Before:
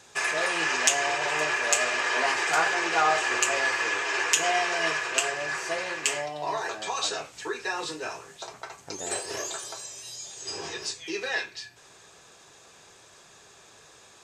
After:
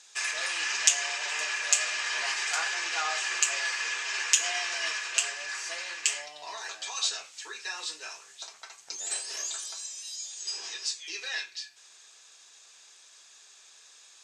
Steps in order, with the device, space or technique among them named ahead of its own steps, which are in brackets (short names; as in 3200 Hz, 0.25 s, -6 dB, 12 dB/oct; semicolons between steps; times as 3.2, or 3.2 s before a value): piezo pickup straight into a mixer (LPF 6000 Hz 12 dB/oct; differentiator); gain +6.5 dB